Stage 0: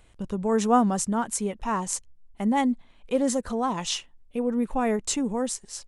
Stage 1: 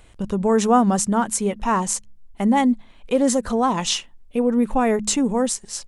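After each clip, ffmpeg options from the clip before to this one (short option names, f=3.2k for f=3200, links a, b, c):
-filter_complex "[0:a]bandreject=f=70.17:t=h:w=4,bandreject=f=140.34:t=h:w=4,bandreject=f=210.51:t=h:w=4,asplit=2[a][b];[b]alimiter=limit=-18dB:level=0:latency=1:release=118,volume=2dB[c];[a][c]amix=inputs=2:normalize=0"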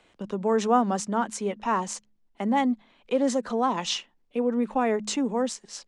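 -filter_complex "[0:a]acrossover=split=170 6700:gain=0.112 1 0.1[a][b][c];[a][b][c]amix=inputs=3:normalize=0,acrossover=split=170[d][e];[d]asoftclip=type=tanh:threshold=-37dB[f];[f][e]amix=inputs=2:normalize=0,volume=-4.5dB"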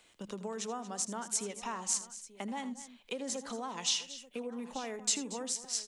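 -af "acompressor=threshold=-29dB:ratio=6,aecho=1:1:80|231|886:0.178|0.168|0.133,crystalizer=i=5:c=0,volume=-8.5dB"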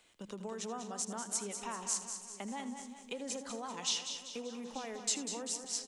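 -af "aecho=1:1:194|388|582|776|970|1164:0.376|0.184|0.0902|0.0442|0.0217|0.0106,volume=-3dB"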